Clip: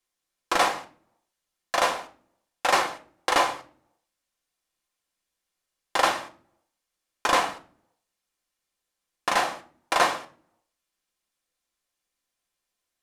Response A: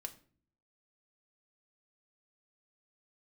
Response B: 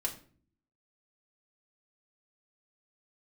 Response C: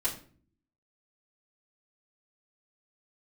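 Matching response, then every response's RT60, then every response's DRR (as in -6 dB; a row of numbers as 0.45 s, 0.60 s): A; 0.45 s, 0.45 s, 0.45 s; 4.5 dB, -1.5 dB, -9.0 dB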